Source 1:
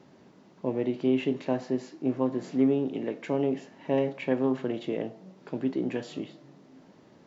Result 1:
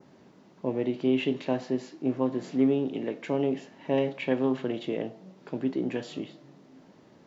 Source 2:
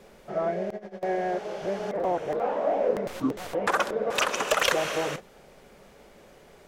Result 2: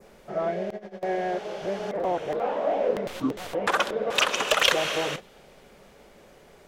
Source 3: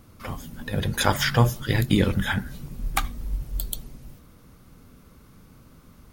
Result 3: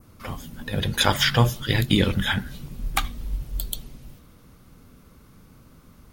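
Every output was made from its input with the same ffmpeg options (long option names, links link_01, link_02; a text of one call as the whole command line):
ffmpeg -i in.wav -af "adynamicequalizer=threshold=0.00501:dfrequency=3300:dqfactor=1.4:tfrequency=3300:tqfactor=1.4:attack=5:release=100:ratio=0.375:range=3.5:mode=boostabove:tftype=bell" out.wav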